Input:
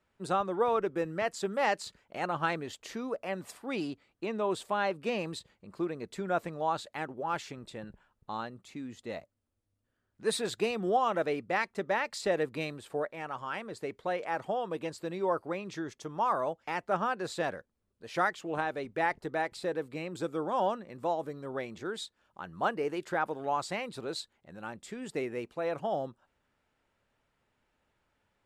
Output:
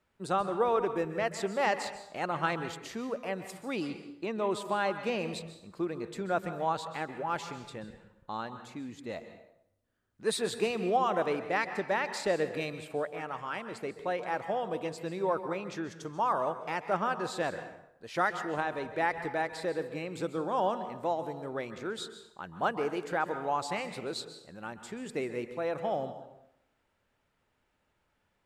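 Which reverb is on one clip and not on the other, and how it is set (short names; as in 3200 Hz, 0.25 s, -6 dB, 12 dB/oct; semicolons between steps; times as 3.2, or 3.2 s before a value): plate-style reverb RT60 0.78 s, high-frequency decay 0.75×, pre-delay 0.12 s, DRR 9.5 dB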